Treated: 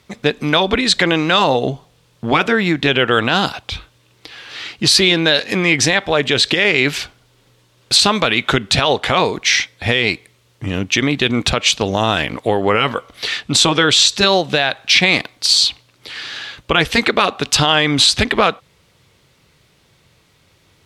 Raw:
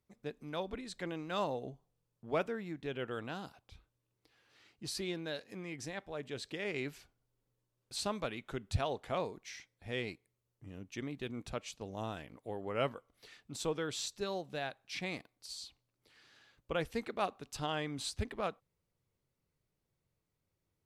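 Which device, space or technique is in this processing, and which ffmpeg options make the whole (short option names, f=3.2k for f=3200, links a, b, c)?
mastering chain: -filter_complex "[0:a]aemphasis=mode=reproduction:type=75fm,asettb=1/sr,asplit=3[a][b][c];[a]atrim=end=13.414[d];[b]atrim=start=13.41:end=14.24,asetpts=PTS-STARTPTS,afade=t=in:d=0.004:c=qsin,afade=t=out:st=0.826:d=0.004:c=qsin,lowpass=f=12k:w=0.5412,lowpass=f=12k:w=1.3066[e];[c]atrim=start=14.236[f];[d][e]acrossfade=d=0.004:c1=hsin:c2=qsin[g];[g][f]acrossfade=d=0.004:c1=qsin:c2=hsin,afftfilt=real='re*lt(hypot(re,im),0.178)':imag='im*lt(hypot(re,im),0.178)':win_size=1024:overlap=0.75,highpass=43,equalizer=f=3.5k:t=o:w=0.59:g=4,acompressor=threshold=-41dB:ratio=2.5,tiltshelf=f=1.4k:g=-7.5,alimiter=level_in=35dB:limit=-1dB:release=50:level=0:latency=1,volume=-1dB"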